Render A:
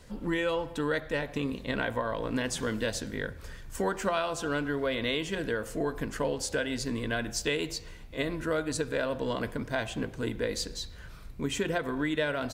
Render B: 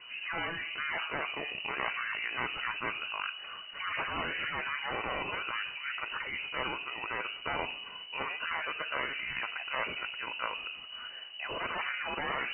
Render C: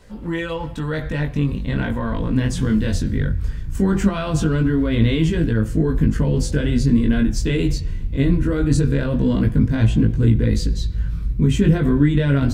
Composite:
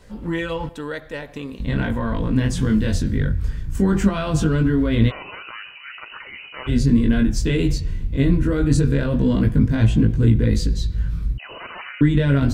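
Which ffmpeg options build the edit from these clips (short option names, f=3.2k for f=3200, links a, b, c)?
-filter_complex "[1:a]asplit=2[a][b];[2:a]asplit=4[c][d][e][f];[c]atrim=end=0.692[g];[0:a]atrim=start=0.688:end=1.602[h];[d]atrim=start=1.598:end=5.12[i];[a]atrim=start=5.08:end=6.7[j];[e]atrim=start=6.66:end=11.382[k];[b]atrim=start=11.378:end=12.012[l];[f]atrim=start=12.008[m];[g][h]acrossfade=d=0.004:c1=hsin:c2=hsin[n];[n][i]acrossfade=d=0.004:c1=hsin:c2=hsin[o];[o][j]acrossfade=d=0.04:c1=tri:c2=tri[p];[p][k]acrossfade=d=0.04:c1=tri:c2=tri[q];[q][l]acrossfade=d=0.004:c1=hsin:c2=hsin[r];[r][m]acrossfade=d=0.004:c1=hsin:c2=hsin"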